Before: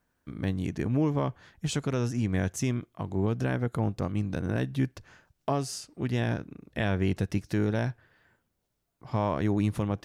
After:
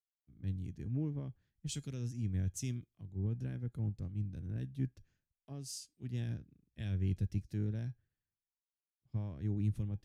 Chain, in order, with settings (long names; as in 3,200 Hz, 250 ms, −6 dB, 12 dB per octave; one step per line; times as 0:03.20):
guitar amp tone stack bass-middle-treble 10-0-1
tuned comb filter 820 Hz, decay 0.18 s, harmonics all, mix 60%
multiband upward and downward expander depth 100%
level +12.5 dB